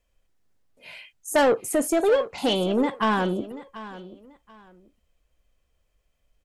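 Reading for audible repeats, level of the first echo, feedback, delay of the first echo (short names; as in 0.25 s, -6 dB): 2, -16.0 dB, 24%, 0.735 s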